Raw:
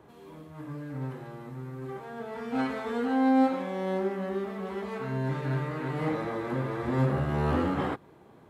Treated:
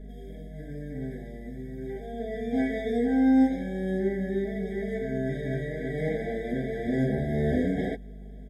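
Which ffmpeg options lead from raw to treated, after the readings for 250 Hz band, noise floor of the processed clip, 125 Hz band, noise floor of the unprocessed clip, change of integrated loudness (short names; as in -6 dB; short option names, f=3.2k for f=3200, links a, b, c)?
+3.0 dB, -42 dBFS, -1.5 dB, -55 dBFS, +2.0 dB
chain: -af "aeval=exprs='val(0)+0.00708*(sin(2*PI*50*n/s)+sin(2*PI*2*50*n/s)/2+sin(2*PI*3*50*n/s)/3+sin(2*PI*4*50*n/s)/4+sin(2*PI*5*50*n/s)/5)':c=same,aecho=1:1:4.6:0.85,afftfilt=real='re*eq(mod(floor(b*sr/1024/780),2),0)':imag='im*eq(mod(floor(b*sr/1024/780),2),0)':win_size=1024:overlap=0.75"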